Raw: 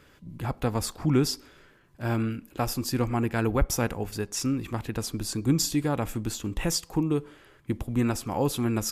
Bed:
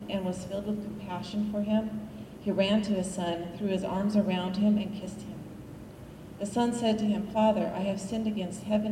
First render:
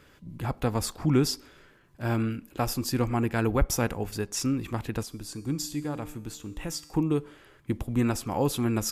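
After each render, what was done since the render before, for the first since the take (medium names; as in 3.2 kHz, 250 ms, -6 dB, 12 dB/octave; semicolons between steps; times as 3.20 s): 5.03–6.94 s: feedback comb 150 Hz, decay 1 s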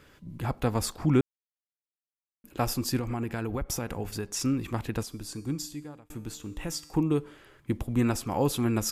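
1.21–2.44 s: mute; 2.98–4.41 s: compression, threshold -27 dBFS; 5.39–6.10 s: fade out linear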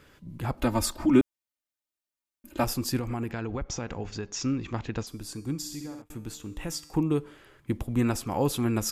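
0.57–2.64 s: comb 3.3 ms, depth 100%; 3.31–5.07 s: elliptic low-pass 6.8 kHz; 5.59–6.02 s: flutter echo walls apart 10.9 m, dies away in 0.73 s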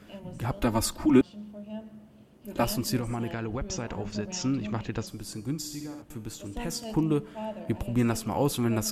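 add bed -12 dB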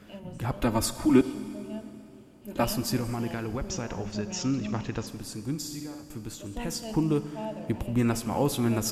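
Schroeder reverb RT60 2.8 s, combs from 30 ms, DRR 12.5 dB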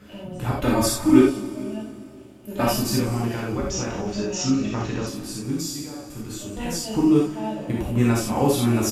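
delay 441 ms -23 dB; gated-style reverb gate 110 ms flat, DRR -4.5 dB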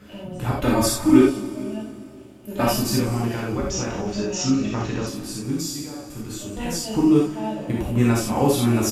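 trim +1 dB; peak limiter -3 dBFS, peak gain reduction 1.5 dB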